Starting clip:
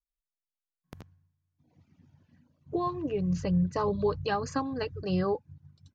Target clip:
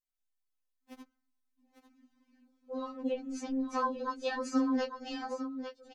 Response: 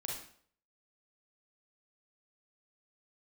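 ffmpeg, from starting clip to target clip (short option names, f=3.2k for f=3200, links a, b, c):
-filter_complex "[0:a]aecho=1:1:849:0.316,asplit=4[a][b][c][d];[b]asetrate=33038,aresample=44100,atempo=1.33484,volume=-17dB[e];[c]asetrate=52444,aresample=44100,atempo=0.840896,volume=-7dB[f];[d]asetrate=66075,aresample=44100,atempo=0.66742,volume=-15dB[g];[a][e][f][g]amix=inputs=4:normalize=0,afftfilt=real='re*3.46*eq(mod(b,12),0)':imag='im*3.46*eq(mod(b,12),0)':win_size=2048:overlap=0.75"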